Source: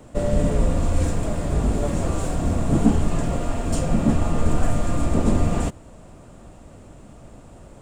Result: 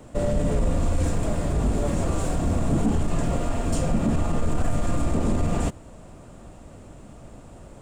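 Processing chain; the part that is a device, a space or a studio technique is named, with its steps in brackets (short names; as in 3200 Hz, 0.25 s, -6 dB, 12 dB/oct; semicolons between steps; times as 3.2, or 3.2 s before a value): soft clipper into limiter (soft clip -8.5 dBFS, distortion -22 dB; limiter -14.5 dBFS, peak gain reduction 5 dB)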